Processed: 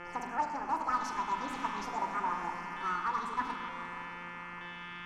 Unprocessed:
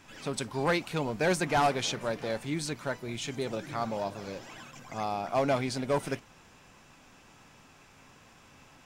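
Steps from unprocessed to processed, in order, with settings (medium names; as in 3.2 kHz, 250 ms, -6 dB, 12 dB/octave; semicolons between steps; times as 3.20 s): FFT filter 150 Hz 0 dB, 270 Hz -13 dB, 530 Hz +1 dB, 1.6 kHz -20 dB, 3.2 kHz -6 dB, 9.6 kHz -29 dB; mains buzz 100 Hz, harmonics 20, -47 dBFS -3 dB/octave; LFO notch square 0.31 Hz 390–2100 Hz; gain riding within 4 dB 0.5 s; wide varispeed 1.75×; peaking EQ 1.5 kHz +9 dB 1.9 oct; on a send: echo that smears into a reverb 590 ms, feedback 49%, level -11 dB; on the sum: reverberation RT60 1.6 s, pre-delay 43 ms, DRR 5 dB; loudspeaker Doppler distortion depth 0.13 ms; trim -7 dB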